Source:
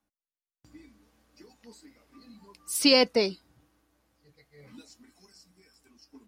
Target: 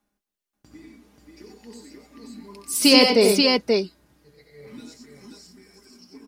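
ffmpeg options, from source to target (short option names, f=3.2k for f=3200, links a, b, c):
-filter_complex "[0:a]equalizer=f=330:w=1.6:g=4,aecho=1:1:4.9:0.39,asplit=2[a][b];[b]aecho=0:1:66|91|116|265|533:0.335|0.631|0.251|0.119|0.708[c];[a][c]amix=inputs=2:normalize=0,volume=4dB"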